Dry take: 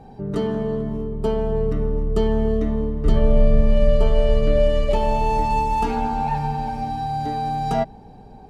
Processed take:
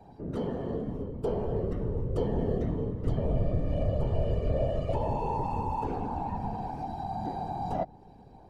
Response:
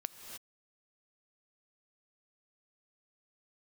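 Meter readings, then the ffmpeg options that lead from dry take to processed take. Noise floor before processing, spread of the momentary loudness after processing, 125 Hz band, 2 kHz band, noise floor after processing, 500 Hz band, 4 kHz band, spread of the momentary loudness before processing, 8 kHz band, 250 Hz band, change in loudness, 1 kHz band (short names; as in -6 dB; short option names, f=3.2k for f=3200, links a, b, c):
-43 dBFS, 5 LU, -6.5 dB, -15.5 dB, -52 dBFS, -10.5 dB, -16.5 dB, 7 LU, n/a, -9.5 dB, -10.0 dB, -11.0 dB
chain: -filter_complex "[0:a]acrossover=split=120|530|1000[a][b][c][d];[d]acompressor=threshold=-43dB:ratio=4[e];[a][b][c][e]amix=inputs=4:normalize=0,alimiter=limit=-9dB:level=0:latency=1:release=400,afftfilt=real='hypot(re,im)*cos(2*PI*random(0))':imag='hypot(re,im)*sin(2*PI*random(1))':win_size=512:overlap=0.75,volume=-3dB"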